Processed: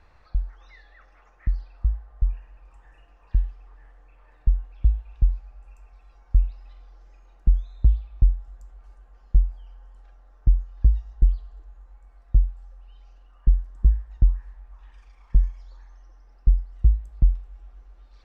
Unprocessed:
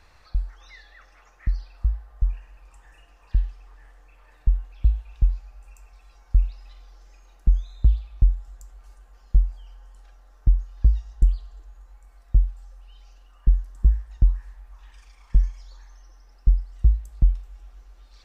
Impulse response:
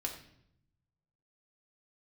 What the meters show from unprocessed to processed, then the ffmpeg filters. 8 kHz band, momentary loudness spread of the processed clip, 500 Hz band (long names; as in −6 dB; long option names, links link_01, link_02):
can't be measured, 9 LU, −0.5 dB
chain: -af "lowpass=frequency=1500:poles=1"